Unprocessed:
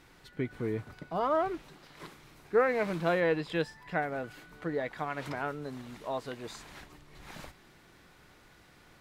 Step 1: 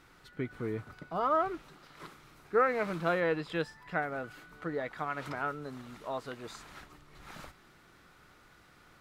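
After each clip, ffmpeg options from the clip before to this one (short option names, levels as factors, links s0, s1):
-af "equalizer=f=1300:w=4.4:g=8,volume=0.75"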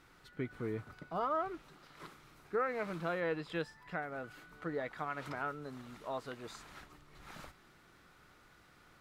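-af "alimiter=limit=0.075:level=0:latency=1:release=416,volume=0.708"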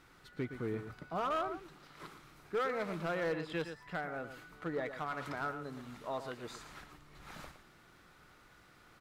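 -af "aecho=1:1:115:0.299,asoftclip=type=hard:threshold=0.0299,volume=1.12"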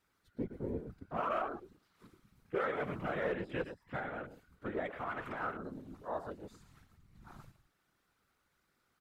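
-af "crystalizer=i=1:c=0,afwtdn=0.00562,afftfilt=real='hypot(re,im)*cos(2*PI*random(0))':imag='hypot(re,im)*sin(2*PI*random(1))':win_size=512:overlap=0.75,volume=1.88"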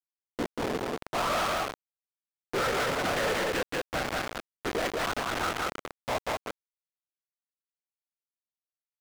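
-filter_complex "[0:a]acrusher=bits=5:mix=0:aa=0.000001,aecho=1:1:187:0.355,asplit=2[s0][s1];[s1]highpass=f=720:p=1,volume=70.8,asoftclip=type=tanh:threshold=0.0794[s2];[s0][s2]amix=inputs=2:normalize=0,lowpass=f=4800:p=1,volume=0.501"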